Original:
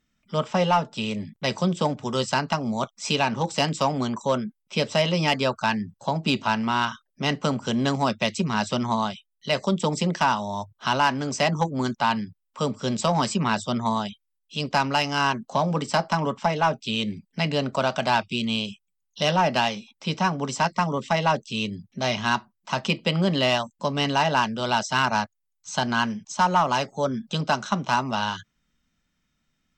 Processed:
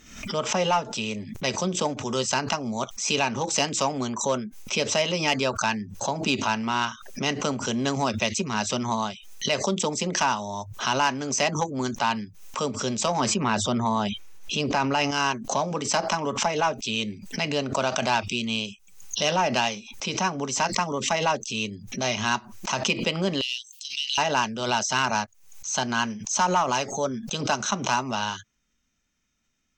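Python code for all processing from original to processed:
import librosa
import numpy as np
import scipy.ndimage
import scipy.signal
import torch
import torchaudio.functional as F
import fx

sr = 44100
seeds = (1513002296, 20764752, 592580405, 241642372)

y = fx.chain(x, sr, fx.high_shelf(hz=3600.0, db=-11.0),
    fx.env_flatten(amount_pct=70), at=(13.2, 15.11))
y = fx.chain(y, sr, fx.ellip_highpass(hz=2900.0, order=4, stop_db=60),
    fx.peak_eq(hz=6800.0, db=-9.5, octaves=0.61),
    fx.band_squash(depth_pct=70), at=(23.41, 24.18))
y = fx.graphic_eq_31(y, sr, hz=(160, 400, 2500, 6300), db=(-8, 3, 4, 11))
y = fx.pre_swell(y, sr, db_per_s=82.0)
y = y * 10.0 ** (-2.5 / 20.0)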